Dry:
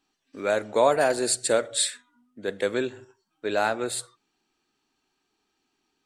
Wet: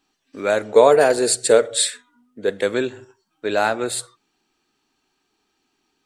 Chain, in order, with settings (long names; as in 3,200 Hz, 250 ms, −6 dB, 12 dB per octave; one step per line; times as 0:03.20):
0:00.66–0:02.49: parametric band 450 Hz +10.5 dB 0.23 octaves
level +5 dB